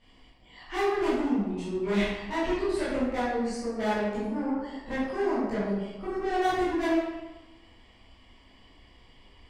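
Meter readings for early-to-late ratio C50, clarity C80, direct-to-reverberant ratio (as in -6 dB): -1.5 dB, 1.5 dB, -12.0 dB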